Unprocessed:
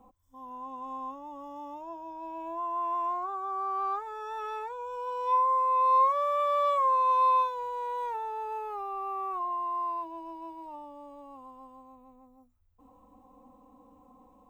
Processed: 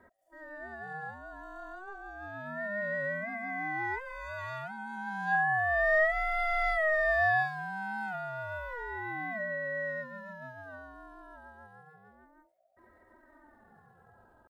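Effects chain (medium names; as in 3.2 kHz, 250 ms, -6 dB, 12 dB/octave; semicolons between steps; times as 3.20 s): pitch shift +3 st; ring modulator with a swept carrier 520 Hz, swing 30%, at 0.31 Hz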